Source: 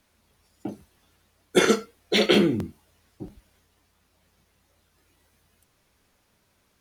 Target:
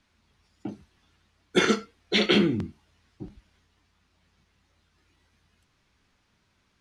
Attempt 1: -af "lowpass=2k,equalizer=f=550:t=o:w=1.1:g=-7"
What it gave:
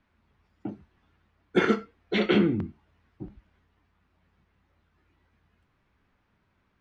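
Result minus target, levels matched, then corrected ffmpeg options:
4000 Hz band -7.0 dB
-af "lowpass=5.4k,equalizer=f=550:t=o:w=1.1:g=-7"

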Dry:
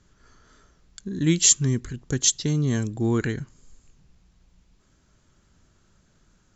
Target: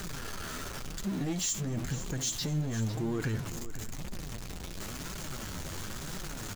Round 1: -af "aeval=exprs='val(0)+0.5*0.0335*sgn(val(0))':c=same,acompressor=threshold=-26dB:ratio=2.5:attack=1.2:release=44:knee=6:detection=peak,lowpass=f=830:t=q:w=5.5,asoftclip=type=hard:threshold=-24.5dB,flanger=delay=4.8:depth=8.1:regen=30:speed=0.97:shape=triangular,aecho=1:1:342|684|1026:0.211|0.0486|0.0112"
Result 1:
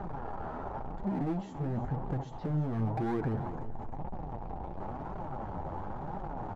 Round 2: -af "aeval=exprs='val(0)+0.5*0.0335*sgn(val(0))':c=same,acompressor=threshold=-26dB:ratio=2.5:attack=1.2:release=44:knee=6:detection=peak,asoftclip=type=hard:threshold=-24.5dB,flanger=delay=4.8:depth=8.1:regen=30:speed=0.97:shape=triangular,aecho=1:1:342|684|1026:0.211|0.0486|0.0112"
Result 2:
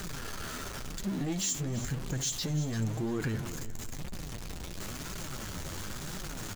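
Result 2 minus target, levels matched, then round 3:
echo 0.161 s early
-af "aeval=exprs='val(0)+0.5*0.0335*sgn(val(0))':c=same,acompressor=threshold=-26dB:ratio=2.5:attack=1.2:release=44:knee=6:detection=peak,asoftclip=type=hard:threshold=-24.5dB,flanger=delay=4.8:depth=8.1:regen=30:speed=0.97:shape=triangular,aecho=1:1:503|1006|1509:0.211|0.0486|0.0112"

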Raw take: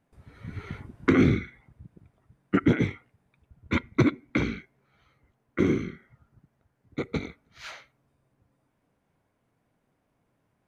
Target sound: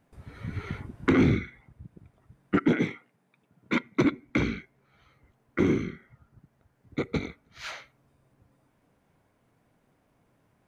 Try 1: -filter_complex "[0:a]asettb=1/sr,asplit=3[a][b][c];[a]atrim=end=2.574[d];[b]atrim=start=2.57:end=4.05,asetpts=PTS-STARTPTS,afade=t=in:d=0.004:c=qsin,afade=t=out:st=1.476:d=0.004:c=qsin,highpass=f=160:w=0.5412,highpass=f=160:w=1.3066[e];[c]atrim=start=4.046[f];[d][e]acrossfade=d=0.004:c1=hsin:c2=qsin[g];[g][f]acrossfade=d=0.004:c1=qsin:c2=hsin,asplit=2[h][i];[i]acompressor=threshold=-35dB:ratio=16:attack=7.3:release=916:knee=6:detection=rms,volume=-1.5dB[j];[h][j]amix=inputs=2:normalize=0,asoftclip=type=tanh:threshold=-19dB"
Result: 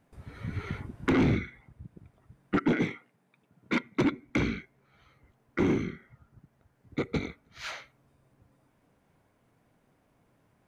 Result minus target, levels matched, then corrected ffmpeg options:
soft clip: distortion +8 dB
-filter_complex "[0:a]asettb=1/sr,asplit=3[a][b][c];[a]atrim=end=2.574[d];[b]atrim=start=2.57:end=4.05,asetpts=PTS-STARTPTS,afade=t=in:d=0.004:c=qsin,afade=t=out:st=1.476:d=0.004:c=qsin,highpass=f=160:w=0.5412,highpass=f=160:w=1.3066[e];[c]atrim=start=4.046[f];[d][e]acrossfade=d=0.004:c1=hsin:c2=qsin[g];[g][f]acrossfade=d=0.004:c1=qsin:c2=hsin,asplit=2[h][i];[i]acompressor=threshold=-35dB:ratio=16:attack=7.3:release=916:knee=6:detection=rms,volume=-1.5dB[j];[h][j]amix=inputs=2:normalize=0,asoftclip=type=tanh:threshold=-12.5dB"

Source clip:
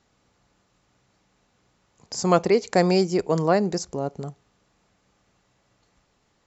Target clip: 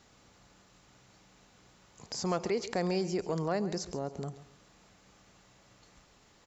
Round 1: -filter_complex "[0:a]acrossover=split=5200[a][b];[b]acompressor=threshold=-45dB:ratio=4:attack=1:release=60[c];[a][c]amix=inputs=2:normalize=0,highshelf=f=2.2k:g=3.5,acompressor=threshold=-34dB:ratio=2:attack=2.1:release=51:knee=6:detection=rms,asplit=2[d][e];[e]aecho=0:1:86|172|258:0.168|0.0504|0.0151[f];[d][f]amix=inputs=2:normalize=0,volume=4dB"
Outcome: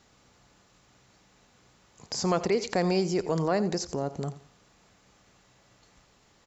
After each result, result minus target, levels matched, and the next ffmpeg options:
echo 51 ms early; compressor: peak gain reduction -5.5 dB
-filter_complex "[0:a]acrossover=split=5200[a][b];[b]acompressor=threshold=-45dB:ratio=4:attack=1:release=60[c];[a][c]amix=inputs=2:normalize=0,highshelf=f=2.2k:g=3.5,acompressor=threshold=-34dB:ratio=2:attack=2.1:release=51:knee=6:detection=rms,asplit=2[d][e];[e]aecho=0:1:137|274|411:0.168|0.0504|0.0151[f];[d][f]amix=inputs=2:normalize=0,volume=4dB"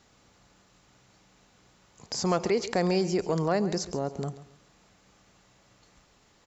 compressor: peak gain reduction -5.5 dB
-filter_complex "[0:a]acrossover=split=5200[a][b];[b]acompressor=threshold=-45dB:ratio=4:attack=1:release=60[c];[a][c]amix=inputs=2:normalize=0,highshelf=f=2.2k:g=3.5,acompressor=threshold=-45dB:ratio=2:attack=2.1:release=51:knee=6:detection=rms,asplit=2[d][e];[e]aecho=0:1:137|274|411:0.168|0.0504|0.0151[f];[d][f]amix=inputs=2:normalize=0,volume=4dB"

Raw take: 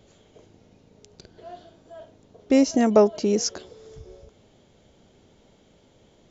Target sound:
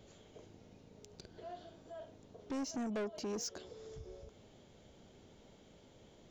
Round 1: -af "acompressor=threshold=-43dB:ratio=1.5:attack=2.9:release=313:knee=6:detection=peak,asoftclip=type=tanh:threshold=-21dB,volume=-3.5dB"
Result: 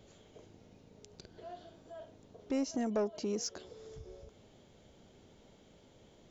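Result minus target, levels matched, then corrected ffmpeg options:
soft clip: distortion -12 dB
-af "acompressor=threshold=-43dB:ratio=1.5:attack=2.9:release=313:knee=6:detection=peak,asoftclip=type=tanh:threshold=-31.5dB,volume=-3.5dB"

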